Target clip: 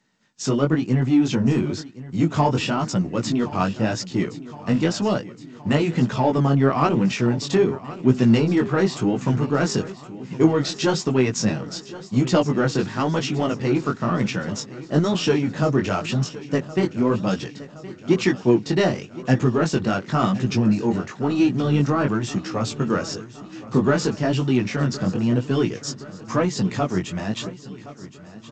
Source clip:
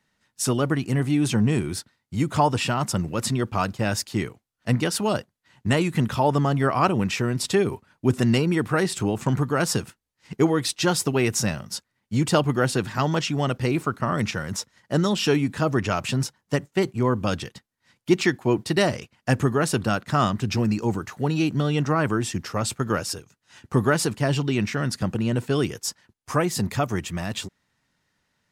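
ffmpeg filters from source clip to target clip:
-filter_complex "[0:a]highpass=180,lowshelf=f=350:g=10,asplit=2[s0][s1];[s1]asoftclip=type=tanh:threshold=0.0891,volume=0.473[s2];[s0][s2]amix=inputs=2:normalize=0,flanger=delay=15.5:depth=6.6:speed=0.98,aecho=1:1:1068|2136|3204|4272|5340|6408:0.141|0.0848|0.0509|0.0305|0.0183|0.011" -ar 16000 -c:a g722

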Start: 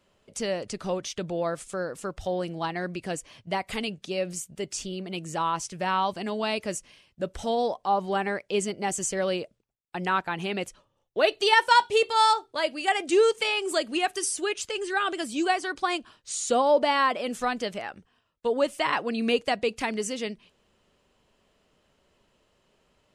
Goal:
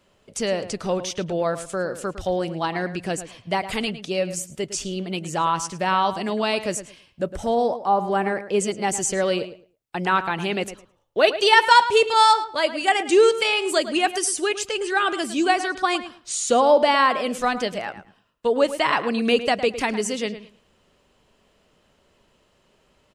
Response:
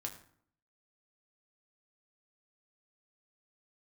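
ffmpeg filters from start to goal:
-filter_complex "[0:a]asettb=1/sr,asplit=3[s0][s1][s2];[s0]atrim=end=7.234[s3];[s1]atrim=start=7.23:end=8.6,asetpts=PTS-STARTPTS,afade=t=in:d=0.004:c=qsin,afade=t=out:st=1.366:d=0.004:c=qsin,equalizer=f=3700:t=o:w=1.4:g=-8[s4];[s2]atrim=start=8.596[s5];[s3][s4]acrossfade=d=0.004:c1=hsin:c2=qsin[s6];[s6][s5]acrossfade=d=0.004:c1=qsin:c2=hsin,asplit=2[s7][s8];[s8]adelay=108,lowpass=f=3300:p=1,volume=0.251,asplit=2[s9][s10];[s10]adelay=108,lowpass=f=3300:p=1,volume=0.2,asplit=2[s11][s12];[s12]adelay=108,lowpass=f=3300:p=1,volume=0.2[s13];[s7][s9][s11][s13]amix=inputs=4:normalize=0,volume=1.78"

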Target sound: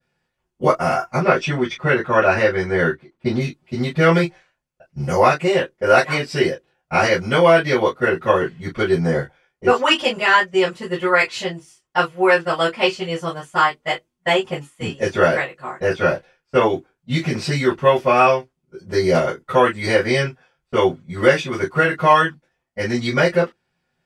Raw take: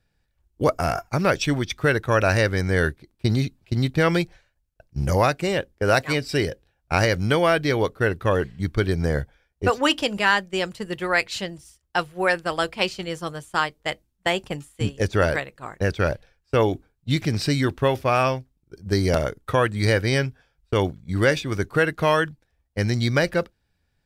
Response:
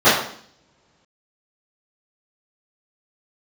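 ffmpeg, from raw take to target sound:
-filter_complex "[0:a]asettb=1/sr,asplit=3[s0][s1][s2];[s0]atrim=end=1.174[s3];[s1]atrim=start=1.17:end=3.4,asetpts=PTS-STARTPTS,afade=t=in:d=0.004:c=qsin,afade=t=out:st=2.226:d=0.004:c=qsin,aemphasis=mode=reproduction:type=50kf[s4];[s2]atrim=start=3.396[s5];[s3][s4]acrossfade=d=0.004:c1=hsin:c2=qsin[s6];[s6][s5]acrossfade=d=0.004:c1=qsin:c2=hsin[s7];[1:a]atrim=start_sample=2205,atrim=end_sample=4410,asetrate=74970,aresample=44100[s8];[s7][s8]afir=irnorm=-1:irlink=0,volume=0.133"

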